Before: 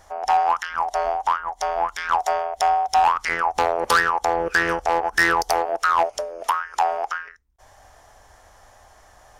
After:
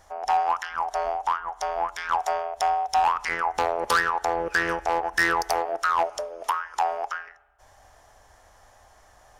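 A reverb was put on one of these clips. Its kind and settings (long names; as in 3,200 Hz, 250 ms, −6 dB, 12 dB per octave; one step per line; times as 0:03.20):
spring reverb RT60 1.2 s, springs 33/56 ms, chirp 45 ms, DRR 19 dB
level −4 dB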